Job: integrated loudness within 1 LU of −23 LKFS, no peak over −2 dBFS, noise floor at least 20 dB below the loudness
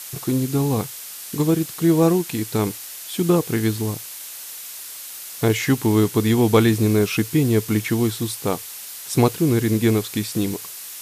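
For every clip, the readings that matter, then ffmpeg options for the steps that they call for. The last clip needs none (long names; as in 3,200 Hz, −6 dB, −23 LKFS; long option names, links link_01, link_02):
background noise floor −36 dBFS; target noise floor −41 dBFS; integrated loudness −20.5 LKFS; sample peak −3.0 dBFS; target loudness −23.0 LKFS
→ -af "afftdn=noise_reduction=6:noise_floor=-36"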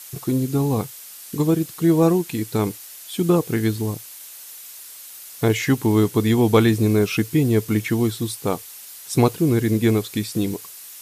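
background noise floor −40 dBFS; target noise floor −41 dBFS
→ -af "afftdn=noise_reduction=6:noise_floor=-40"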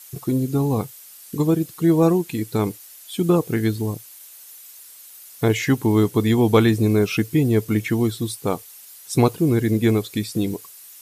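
background noise floor −44 dBFS; integrated loudness −20.5 LKFS; sample peak −3.5 dBFS; target loudness −23.0 LKFS
→ -af "volume=-2.5dB"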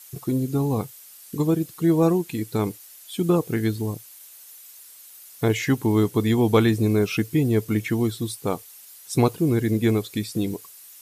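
integrated loudness −23.0 LKFS; sample peak −6.0 dBFS; background noise floor −46 dBFS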